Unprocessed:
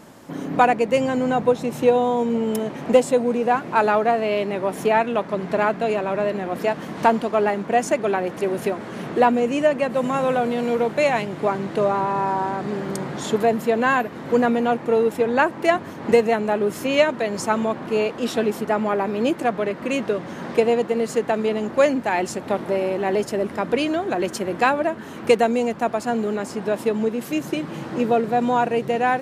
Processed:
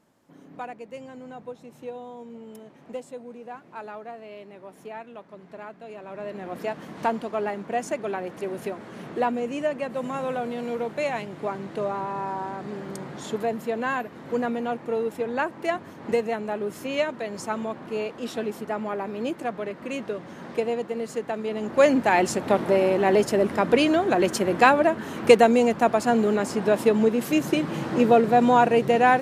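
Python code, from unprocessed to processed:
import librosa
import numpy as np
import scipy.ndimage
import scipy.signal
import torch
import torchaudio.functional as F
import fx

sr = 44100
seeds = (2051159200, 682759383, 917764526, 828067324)

y = fx.gain(x, sr, db=fx.line((5.84, -20.0), (6.48, -8.0), (21.45, -8.0), (21.96, 2.0)))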